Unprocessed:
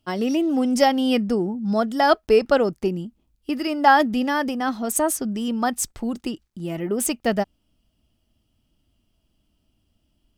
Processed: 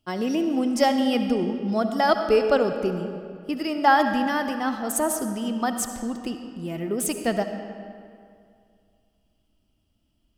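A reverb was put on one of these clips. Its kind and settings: algorithmic reverb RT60 2.3 s, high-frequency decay 0.7×, pre-delay 30 ms, DRR 7 dB; trim -3 dB

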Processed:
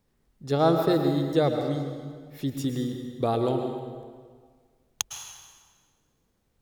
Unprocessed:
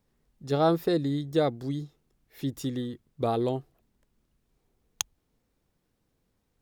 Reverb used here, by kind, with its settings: plate-style reverb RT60 1.7 s, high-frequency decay 0.8×, pre-delay 95 ms, DRR 4.5 dB; trim +1.5 dB

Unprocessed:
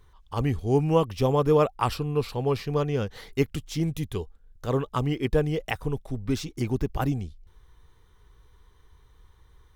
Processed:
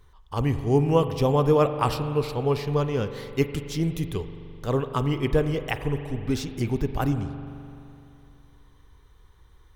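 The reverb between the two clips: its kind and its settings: spring tank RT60 2.8 s, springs 42 ms, chirp 75 ms, DRR 9 dB; trim +1 dB

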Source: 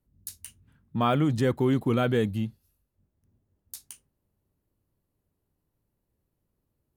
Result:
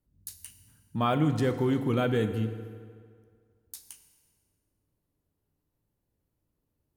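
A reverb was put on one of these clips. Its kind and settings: FDN reverb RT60 2 s, low-frequency decay 0.9×, high-frequency decay 0.75×, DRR 8 dB; trim -2.5 dB

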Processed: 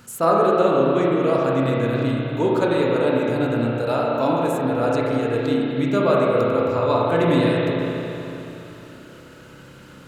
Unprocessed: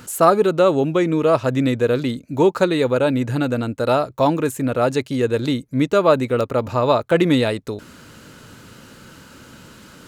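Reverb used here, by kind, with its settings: spring tank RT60 3.3 s, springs 30/34 ms, chirp 50 ms, DRR -4.5 dB; trim -7 dB

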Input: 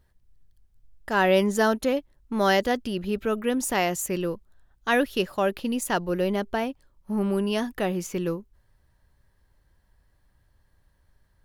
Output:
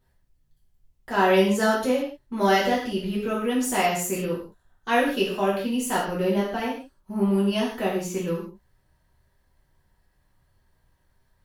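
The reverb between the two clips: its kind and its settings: gated-style reverb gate 200 ms falling, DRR -7 dB; trim -6.5 dB

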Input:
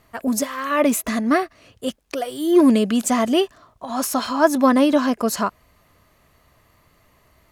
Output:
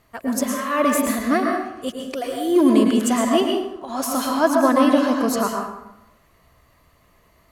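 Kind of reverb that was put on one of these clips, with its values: plate-style reverb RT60 0.9 s, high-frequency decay 0.6×, pre-delay 95 ms, DRR 1 dB; trim -2.5 dB

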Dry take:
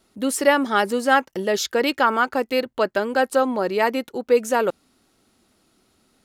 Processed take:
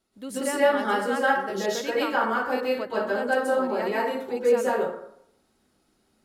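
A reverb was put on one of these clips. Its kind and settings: plate-style reverb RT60 0.7 s, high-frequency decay 0.5×, pre-delay 115 ms, DRR -8.5 dB; trim -14 dB

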